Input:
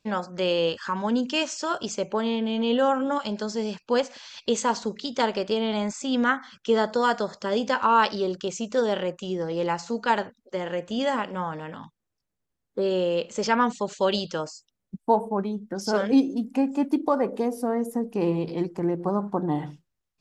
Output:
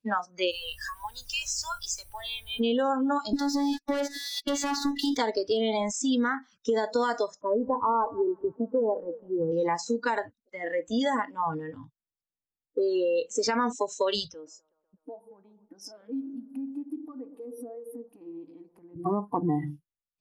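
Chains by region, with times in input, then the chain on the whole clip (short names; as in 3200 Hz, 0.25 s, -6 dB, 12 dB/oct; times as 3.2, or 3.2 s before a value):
0.5–2.59 HPF 1200 Hz + compressor 5:1, threshold -31 dBFS + added noise pink -53 dBFS
3.33–5.17 air absorption 84 m + sample leveller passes 3 + robotiser 283 Hz
7.41–9.52 switching dead time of 0.064 ms + LPF 1100 Hz 24 dB/oct + feedback echo 0.171 s, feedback 55%, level -16 dB
14.28–18.96 tone controls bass -2 dB, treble -10 dB + compressor 4:1, threshold -39 dBFS + band-limited delay 0.125 s, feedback 72%, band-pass 630 Hz, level -12.5 dB
whole clip: spectral noise reduction 23 dB; limiter -17.5 dBFS; compressor 4:1, threshold -29 dBFS; gain +5.5 dB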